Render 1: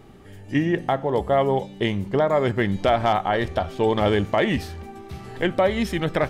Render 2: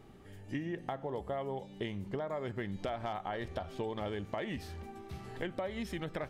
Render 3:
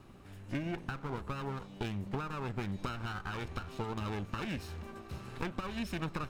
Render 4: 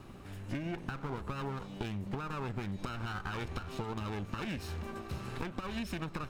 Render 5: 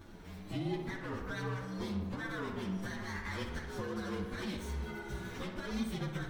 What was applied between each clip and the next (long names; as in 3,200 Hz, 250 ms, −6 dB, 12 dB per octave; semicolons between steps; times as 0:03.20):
downward compressor, threshold −26 dBFS, peak gain reduction 11 dB; level −8.5 dB
lower of the sound and its delayed copy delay 0.74 ms; level +2 dB
downward compressor, threshold −39 dBFS, peak gain reduction 8.5 dB; level +5 dB
partials spread apart or drawn together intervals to 115%; flanger 0.9 Hz, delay 3.2 ms, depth 3 ms, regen −35%; tape delay 62 ms, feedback 83%, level −6 dB, low-pass 3,300 Hz; level +5 dB